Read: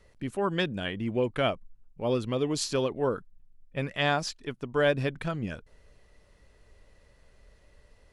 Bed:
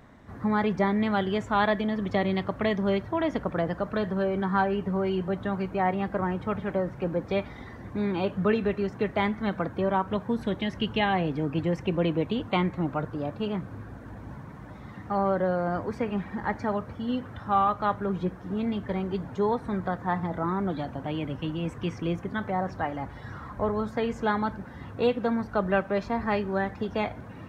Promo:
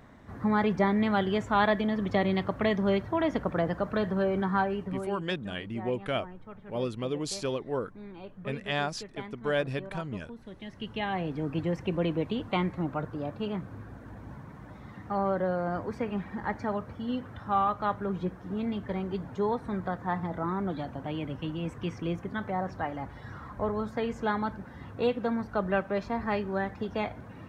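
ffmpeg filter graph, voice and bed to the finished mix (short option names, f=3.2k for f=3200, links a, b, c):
-filter_complex "[0:a]adelay=4700,volume=-4dB[a];[1:a]volume=13.5dB,afade=t=out:st=4.38:d=0.88:silence=0.149624,afade=t=in:st=10.5:d=1.03:silence=0.199526[b];[a][b]amix=inputs=2:normalize=0"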